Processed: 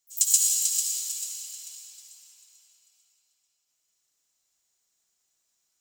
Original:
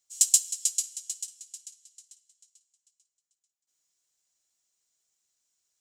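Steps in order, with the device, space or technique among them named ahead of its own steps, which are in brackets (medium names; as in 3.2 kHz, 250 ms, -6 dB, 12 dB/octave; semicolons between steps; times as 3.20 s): shimmer-style reverb (harmony voices +12 st -10 dB; reverberation RT60 5.1 s, pre-delay 55 ms, DRR -4.5 dB); trim -1.5 dB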